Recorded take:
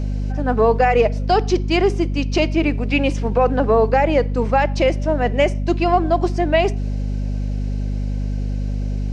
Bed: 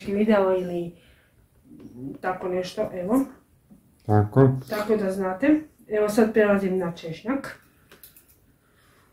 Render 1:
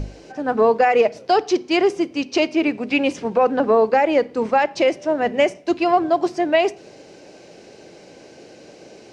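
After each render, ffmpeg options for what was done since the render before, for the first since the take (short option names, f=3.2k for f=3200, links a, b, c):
-af "bandreject=f=50:t=h:w=6,bandreject=f=100:t=h:w=6,bandreject=f=150:t=h:w=6,bandreject=f=200:t=h:w=6,bandreject=f=250:t=h:w=6"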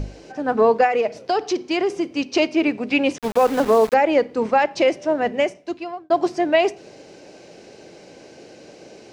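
-filter_complex "[0:a]asettb=1/sr,asplit=3[a][b][c];[a]atrim=end=0.864[d];[b]atrim=start=0.86:end=2.14,asetpts=PTS-STARTPTS,afade=t=in:d=0.004:c=qsin,afade=t=out:st=1.276:d=0.004:c=qsin,acompressor=threshold=-18dB:ratio=2.5:attack=3.2:release=140:knee=1:detection=peak[e];[c]atrim=start=2.136[f];[d][e]acrossfade=d=0.004:c1=hsin:c2=qsin[g];[g][f]acrossfade=d=0.004:c1=qsin:c2=hsin,asettb=1/sr,asplit=3[h][i][j];[h]atrim=end=3.184[k];[i]atrim=start=3.18:end=3.94,asetpts=PTS-STARTPTS,afade=t=in:d=0.004:c=qsin,afade=t=out:st=0.756:d=0.004:c=qsin,aeval=exprs='val(0)*gte(abs(val(0)),0.0473)':c=same[l];[j]atrim=start=3.936[m];[k][l]acrossfade=d=0.004:c1=hsin:c2=qsin[n];[n][m]acrossfade=d=0.004:c1=qsin:c2=hsin,asplit=2[o][p];[o]atrim=end=6.1,asetpts=PTS-STARTPTS,afade=t=out:st=5.13:d=0.97[q];[p]atrim=start=6.1,asetpts=PTS-STARTPTS,afade=t=in:d=0.004:c=hsin[r];[q][r]concat=n=2:v=0:a=1"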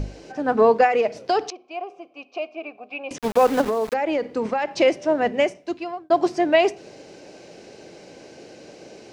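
-filter_complex "[0:a]asettb=1/sr,asplit=3[a][b][c];[a]atrim=end=1.504[d];[b]atrim=start=1.5:end=3.11,asetpts=PTS-STARTPTS,afade=t=in:d=0.004:c=qsin,afade=t=out:st=1.606:d=0.004:c=qsin,asplit=3[e][f][g];[e]bandpass=f=730:t=q:w=8,volume=0dB[h];[f]bandpass=f=1.09k:t=q:w=8,volume=-6dB[i];[g]bandpass=f=2.44k:t=q:w=8,volume=-9dB[j];[h][i][j]amix=inputs=3:normalize=0[k];[c]atrim=start=3.106[l];[d][k]acrossfade=d=0.004:c1=hsin:c2=qsin[m];[m][l]acrossfade=d=0.004:c1=qsin:c2=hsin,asettb=1/sr,asplit=3[n][o][p];[n]atrim=end=3.614[q];[o]atrim=start=3.61:end=4.77,asetpts=PTS-STARTPTS,afade=t=in:d=0.004:c=qsin,afade=t=out:st=1.156:d=0.004:c=qsin,acompressor=threshold=-19dB:ratio=6:attack=3.2:release=140:knee=1:detection=peak[r];[p]atrim=start=4.766[s];[q][r]acrossfade=d=0.004:c1=hsin:c2=qsin[t];[t][s]acrossfade=d=0.004:c1=qsin:c2=hsin"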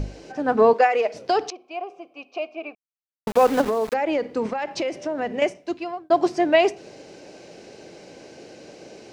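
-filter_complex "[0:a]asettb=1/sr,asplit=3[a][b][c];[a]atrim=end=0.734[d];[b]atrim=start=0.73:end=1.14,asetpts=PTS-STARTPTS,afade=t=in:d=0.004:c=qsin,afade=t=out:st=0.406:d=0.004:c=qsin,highpass=390[e];[c]atrim=start=1.136[f];[d][e]acrossfade=d=0.004:c1=hsin:c2=qsin[g];[g][f]acrossfade=d=0.004:c1=qsin:c2=hsin,asettb=1/sr,asplit=3[h][i][j];[h]atrim=end=4.484[k];[i]atrim=start=4.48:end=5.42,asetpts=PTS-STARTPTS,afade=t=in:d=0.004:c=qsin,afade=t=out:st=0.936:d=0.004:c=qsin,acompressor=threshold=-22dB:ratio=6:attack=3.2:release=140:knee=1:detection=peak[l];[j]atrim=start=5.416[m];[k][l]acrossfade=d=0.004:c1=hsin:c2=qsin[n];[n][m]acrossfade=d=0.004:c1=qsin:c2=hsin,asplit=3[o][p][q];[o]atrim=end=2.75,asetpts=PTS-STARTPTS,afade=t=out:st=2.746:d=0.004:c=hsin[r];[p]atrim=start=2.75:end=3.27,asetpts=PTS-STARTPTS,volume=0[s];[q]atrim=start=3.27,asetpts=PTS-STARTPTS,afade=t=in:d=0.004:c=hsin[t];[r][s][t]concat=n=3:v=0:a=1"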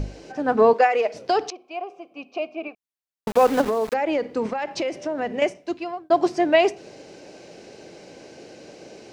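-filter_complex "[0:a]asettb=1/sr,asplit=3[a][b][c];[a]atrim=end=2.114[d];[b]atrim=start=2.11:end=2.68,asetpts=PTS-STARTPTS,afade=t=in:d=0.004:c=qsin,afade=t=out:st=0.566:d=0.004:c=qsin,equalizer=f=190:t=o:w=1.1:g=12[e];[c]atrim=start=2.676[f];[d][e]acrossfade=d=0.004:c1=hsin:c2=qsin[g];[g][f]acrossfade=d=0.004:c1=qsin:c2=hsin"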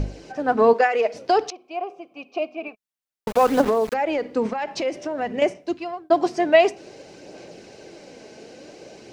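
-af "aphaser=in_gain=1:out_gain=1:delay=4.7:decay=0.3:speed=0.54:type=sinusoidal"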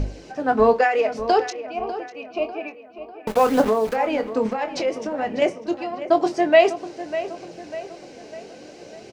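-filter_complex "[0:a]asplit=2[a][b];[b]adelay=23,volume=-9.5dB[c];[a][c]amix=inputs=2:normalize=0,asplit=2[d][e];[e]adelay=597,lowpass=f=3.3k:p=1,volume=-12.5dB,asplit=2[f][g];[g]adelay=597,lowpass=f=3.3k:p=1,volume=0.5,asplit=2[h][i];[i]adelay=597,lowpass=f=3.3k:p=1,volume=0.5,asplit=2[j][k];[k]adelay=597,lowpass=f=3.3k:p=1,volume=0.5,asplit=2[l][m];[m]adelay=597,lowpass=f=3.3k:p=1,volume=0.5[n];[d][f][h][j][l][n]amix=inputs=6:normalize=0"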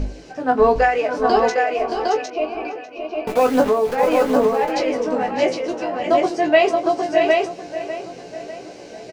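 -filter_complex "[0:a]asplit=2[a][b];[b]adelay=16,volume=-5dB[c];[a][c]amix=inputs=2:normalize=0,asplit=2[d][e];[e]aecho=0:1:622|628|758:0.376|0.282|0.668[f];[d][f]amix=inputs=2:normalize=0"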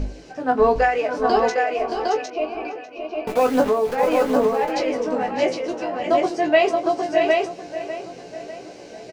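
-af "volume=-2dB"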